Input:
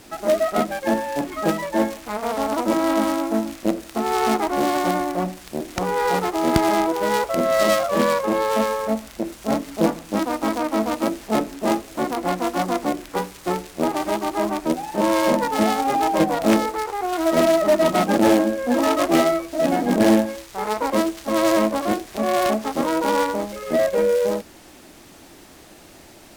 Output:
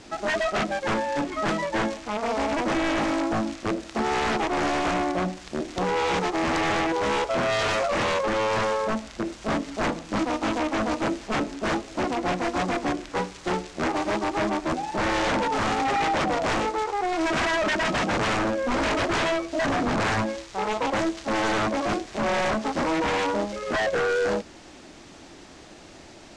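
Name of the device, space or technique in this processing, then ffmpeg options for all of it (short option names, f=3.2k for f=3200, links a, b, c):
synthesiser wavefolder: -af "aeval=exprs='0.112*(abs(mod(val(0)/0.112+3,4)-2)-1)':c=same,lowpass=f=7.3k:w=0.5412,lowpass=f=7.3k:w=1.3066"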